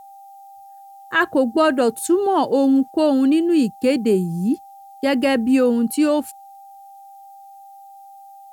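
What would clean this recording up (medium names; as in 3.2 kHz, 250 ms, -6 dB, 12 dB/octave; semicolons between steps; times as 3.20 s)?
band-stop 790 Hz, Q 30; expander -35 dBFS, range -21 dB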